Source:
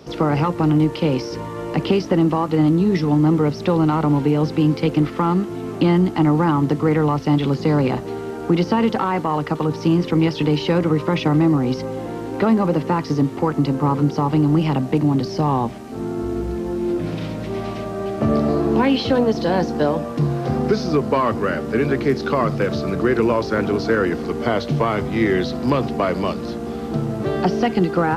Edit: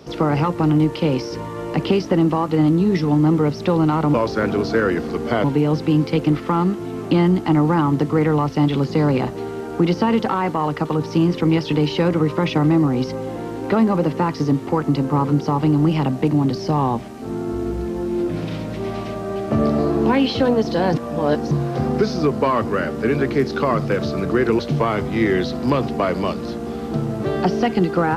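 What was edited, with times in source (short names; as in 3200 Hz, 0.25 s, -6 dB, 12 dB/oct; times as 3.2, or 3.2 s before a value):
19.64–20.21 reverse
23.29–24.59 move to 4.14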